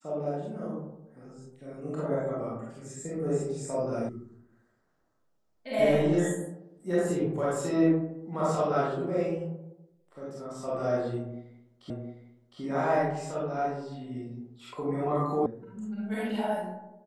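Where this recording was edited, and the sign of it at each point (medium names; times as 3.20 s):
4.09 s: sound stops dead
11.90 s: repeat of the last 0.71 s
15.46 s: sound stops dead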